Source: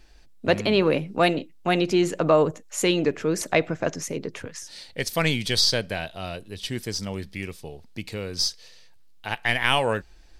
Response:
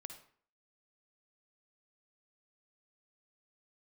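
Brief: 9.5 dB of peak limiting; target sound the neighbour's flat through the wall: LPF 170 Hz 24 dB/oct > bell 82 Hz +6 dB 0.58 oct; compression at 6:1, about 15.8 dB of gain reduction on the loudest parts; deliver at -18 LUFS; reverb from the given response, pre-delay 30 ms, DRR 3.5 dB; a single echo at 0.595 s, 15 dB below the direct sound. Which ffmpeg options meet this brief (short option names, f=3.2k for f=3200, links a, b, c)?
-filter_complex "[0:a]acompressor=threshold=-32dB:ratio=6,alimiter=level_in=1dB:limit=-24dB:level=0:latency=1,volume=-1dB,aecho=1:1:595:0.178,asplit=2[a][b];[1:a]atrim=start_sample=2205,adelay=30[c];[b][c]afir=irnorm=-1:irlink=0,volume=1.5dB[d];[a][d]amix=inputs=2:normalize=0,lowpass=f=170:w=0.5412,lowpass=f=170:w=1.3066,equalizer=f=82:t=o:w=0.58:g=6,volume=26.5dB"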